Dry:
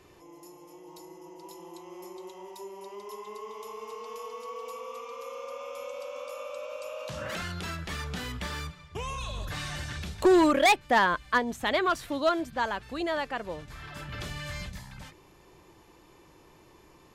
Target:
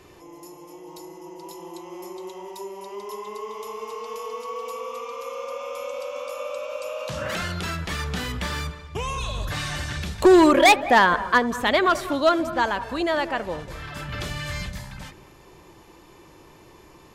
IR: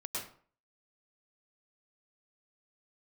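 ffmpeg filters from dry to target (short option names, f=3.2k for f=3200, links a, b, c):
-filter_complex "[0:a]asplit=2[a][b];[1:a]atrim=start_sample=2205,lowpass=2.1k,adelay=83[c];[b][c]afir=irnorm=-1:irlink=0,volume=-14.5dB[d];[a][d]amix=inputs=2:normalize=0,volume=6.5dB"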